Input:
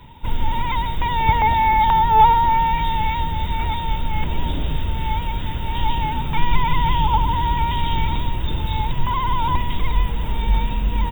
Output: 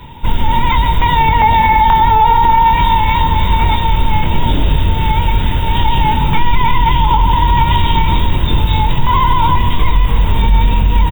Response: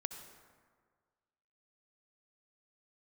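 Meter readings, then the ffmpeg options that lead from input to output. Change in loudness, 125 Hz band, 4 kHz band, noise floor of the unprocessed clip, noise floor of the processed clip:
+8.0 dB, +9.5 dB, +9.0 dB, -25 dBFS, -15 dBFS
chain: -filter_complex "[0:a]asplit=5[s0][s1][s2][s3][s4];[s1]adelay=300,afreqshift=41,volume=0.178[s5];[s2]adelay=600,afreqshift=82,volume=0.0804[s6];[s3]adelay=900,afreqshift=123,volume=0.0359[s7];[s4]adelay=1200,afreqshift=164,volume=0.0162[s8];[s0][s5][s6][s7][s8]amix=inputs=5:normalize=0,asplit=2[s9][s10];[1:a]atrim=start_sample=2205,adelay=22[s11];[s10][s11]afir=irnorm=-1:irlink=0,volume=0.531[s12];[s9][s12]amix=inputs=2:normalize=0,alimiter=level_in=3.35:limit=0.891:release=50:level=0:latency=1,volume=0.891"

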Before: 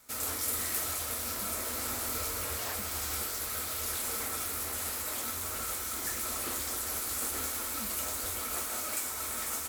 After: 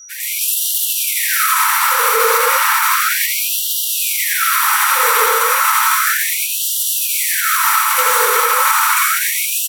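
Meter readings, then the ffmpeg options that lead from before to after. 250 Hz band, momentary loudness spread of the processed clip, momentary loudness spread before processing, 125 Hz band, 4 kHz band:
under -10 dB, 4 LU, 2 LU, under -30 dB, +19.0 dB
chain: -filter_complex "[0:a]highpass=130,highshelf=f=9100:g=-11.5,aeval=exprs='val(0)+0.00891*sin(2*PI*5800*n/s)':c=same,afftdn=nr=19:nf=-58,asplit=2[s0][s1];[s1]aecho=0:1:590|944|1156|1284|1360:0.631|0.398|0.251|0.158|0.1[s2];[s0][s2]amix=inputs=2:normalize=0,dynaudnorm=f=120:g=5:m=3.35,asuperstop=centerf=670:order=8:qfactor=1.9,equalizer=f=5900:t=o:w=2.4:g=-15,asplit=2[s3][s4];[s4]aecho=0:1:87:0.668[s5];[s3][s5]amix=inputs=2:normalize=0,alimiter=level_in=12.6:limit=0.891:release=50:level=0:latency=1,afftfilt=real='re*gte(b*sr/1024,420*pow(2800/420,0.5+0.5*sin(2*PI*0.33*pts/sr)))':imag='im*gte(b*sr/1024,420*pow(2800/420,0.5+0.5*sin(2*PI*0.33*pts/sr)))':win_size=1024:overlap=0.75,volume=0.891"

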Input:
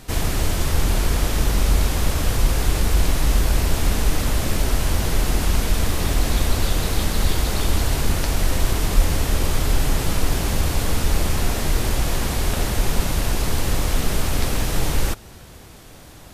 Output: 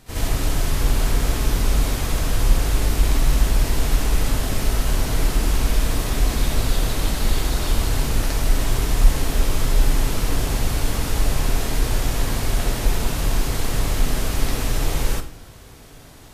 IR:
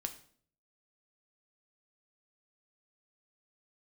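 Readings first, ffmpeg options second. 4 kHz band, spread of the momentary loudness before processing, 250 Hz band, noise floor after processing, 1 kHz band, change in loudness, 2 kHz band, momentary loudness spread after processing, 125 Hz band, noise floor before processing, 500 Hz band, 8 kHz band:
-1.5 dB, 2 LU, -1.0 dB, -42 dBFS, -1.5 dB, -0.5 dB, -1.5 dB, 3 LU, -1.0 dB, -42 dBFS, -1.5 dB, -1.5 dB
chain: -filter_complex "[0:a]asplit=2[s0][s1];[1:a]atrim=start_sample=2205,adelay=63[s2];[s1][s2]afir=irnorm=-1:irlink=0,volume=2.11[s3];[s0][s3]amix=inputs=2:normalize=0,volume=0.398"

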